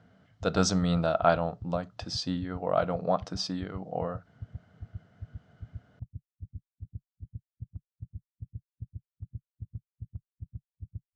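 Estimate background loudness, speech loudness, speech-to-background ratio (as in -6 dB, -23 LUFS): -47.0 LUFS, -29.5 LUFS, 17.5 dB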